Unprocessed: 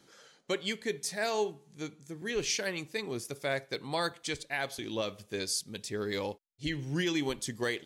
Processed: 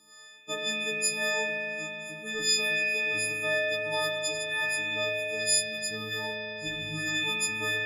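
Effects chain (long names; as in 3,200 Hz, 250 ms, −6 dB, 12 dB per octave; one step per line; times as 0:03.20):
every partial snapped to a pitch grid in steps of 6 semitones
spring reverb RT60 3.8 s, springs 37 ms, chirp 60 ms, DRR −4 dB
level −6 dB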